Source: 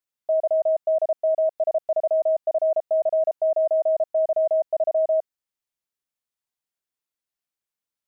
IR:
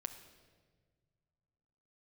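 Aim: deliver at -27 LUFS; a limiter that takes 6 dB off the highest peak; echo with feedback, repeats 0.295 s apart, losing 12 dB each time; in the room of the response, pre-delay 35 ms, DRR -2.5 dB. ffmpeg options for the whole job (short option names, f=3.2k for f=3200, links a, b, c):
-filter_complex "[0:a]alimiter=limit=-22.5dB:level=0:latency=1,aecho=1:1:295|590|885:0.251|0.0628|0.0157,asplit=2[a][b];[1:a]atrim=start_sample=2205,adelay=35[c];[b][c]afir=irnorm=-1:irlink=0,volume=4.5dB[d];[a][d]amix=inputs=2:normalize=0,volume=-1.5dB"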